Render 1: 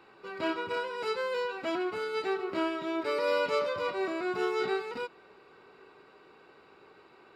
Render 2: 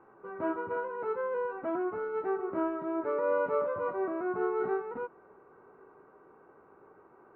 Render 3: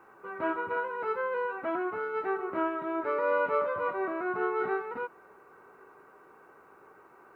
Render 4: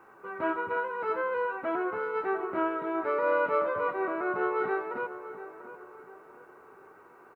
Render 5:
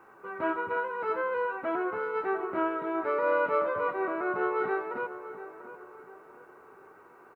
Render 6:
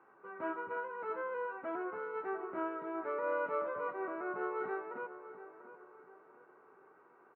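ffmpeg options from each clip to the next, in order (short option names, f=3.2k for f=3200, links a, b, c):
-af "lowpass=f=1.4k:w=0.5412,lowpass=f=1.4k:w=1.3066"
-af "tiltshelf=f=1.5k:g=-9,volume=7dB"
-filter_complex "[0:a]asplit=2[a][b];[b]adelay=692,lowpass=f=2k:p=1,volume=-12.5dB,asplit=2[c][d];[d]adelay=692,lowpass=f=2k:p=1,volume=0.4,asplit=2[e][f];[f]adelay=692,lowpass=f=2k:p=1,volume=0.4,asplit=2[g][h];[h]adelay=692,lowpass=f=2k:p=1,volume=0.4[i];[a][c][e][g][i]amix=inputs=5:normalize=0,volume=1dB"
-af anull
-af "highpass=140,lowpass=2.4k,volume=-8.5dB"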